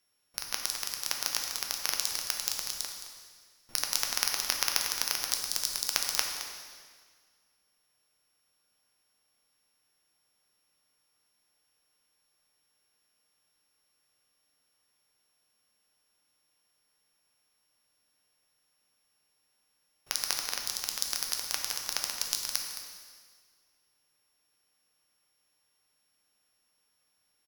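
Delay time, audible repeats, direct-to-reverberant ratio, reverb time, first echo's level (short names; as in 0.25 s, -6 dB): 0.217 s, 1, 1.0 dB, 1.7 s, -13.0 dB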